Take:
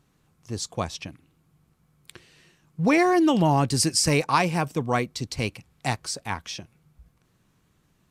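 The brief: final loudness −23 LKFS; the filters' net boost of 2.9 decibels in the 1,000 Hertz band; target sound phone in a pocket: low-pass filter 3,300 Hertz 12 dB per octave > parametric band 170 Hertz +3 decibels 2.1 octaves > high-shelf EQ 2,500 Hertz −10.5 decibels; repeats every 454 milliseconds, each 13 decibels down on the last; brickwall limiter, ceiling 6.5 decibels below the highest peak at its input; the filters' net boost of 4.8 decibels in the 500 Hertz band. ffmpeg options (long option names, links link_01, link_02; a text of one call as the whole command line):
ffmpeg -i in.wav -af "equalizer=frequency=500:width_type=o:gain=5,equalizer=frequency=1000:width_type=o:gain=3,alimiter=limit=-11dB:level=0:latency=1,lowpass=3300,equalizer=frequency=170:width_type=o:width=2.1:gain=3,highshelf=frequency=2500:gain=-10.5,aecho=1:1:454|908|1362:0.224|0.0493|0.0108" out.wav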